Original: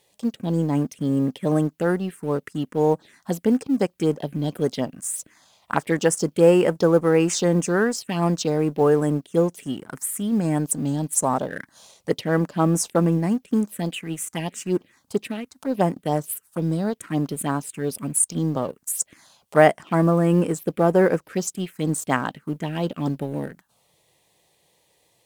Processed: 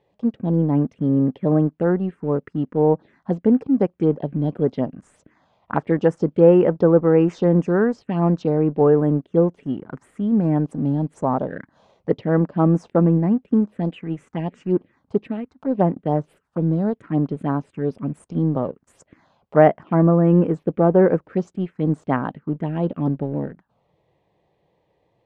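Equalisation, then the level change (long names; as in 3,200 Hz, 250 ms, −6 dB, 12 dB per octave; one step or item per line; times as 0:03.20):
head-to-tape spacing loss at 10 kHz 35 dB
high-shelf EQ 2,000 Hz −8.5 dB
+4.5 dB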